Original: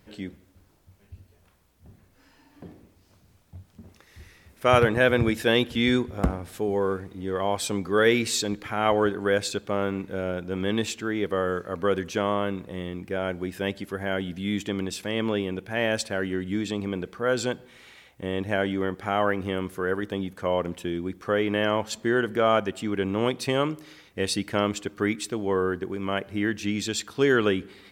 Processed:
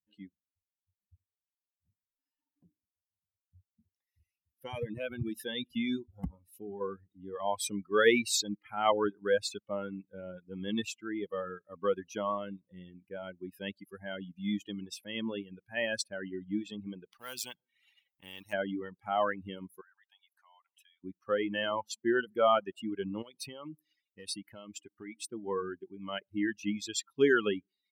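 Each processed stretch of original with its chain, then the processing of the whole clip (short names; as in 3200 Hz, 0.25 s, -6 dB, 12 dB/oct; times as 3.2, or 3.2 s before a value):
2.65–6.81 compressor 2.5:1, threshold -22 dBFS + cascading phaser rising 1.3 Hz
17.12–18.53 G.711 law mismatch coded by A + spectral compressor 2:1
19.81–21.04 Chebyshev high-pass 740 Hz, order 4 + compressor 5:1, threshold -39 dBFS
23.22–25.16 high shelf 7600 Hz +2 dB + compressor 3:1, threshold -28 dBFS + hard clip -21.5 dBFS
whole clip: per-bin expansion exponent 2; HPF 150 Hz 6 dB/oct; reverb removal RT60 0.55 s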